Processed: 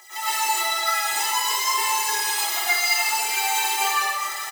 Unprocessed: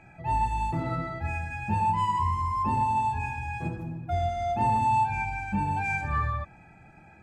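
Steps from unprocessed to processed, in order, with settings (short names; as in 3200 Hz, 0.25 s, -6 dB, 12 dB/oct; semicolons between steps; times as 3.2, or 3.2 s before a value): spectral whitening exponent 0.1; Chebyshev high-pass 370 Hz, order 6; bell 550 Hz +3.5 dB 0.26 oct; notch 690 Hz, Q 13; comb 1 ms, depth 81%; reverse; upward compressor, threshold -38 dBFS; reverse; limiter -17.5 dBFS, peak gain reduction 7.5 dB; compressor 6:1, threshold -35 dBFS, peak gain reduction 11.5 dB; phaser 0.6 Hz, delay 3 ms, feedback 55%; tempo 1.6×; echo with dull and thin repeats by turns 0.206 s, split 1000 Hz, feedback 53%, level -6 dB; reverb RT60 0.70 s, pre-delay 95 ms, DRR -11.5 dB; gain +2.5 dB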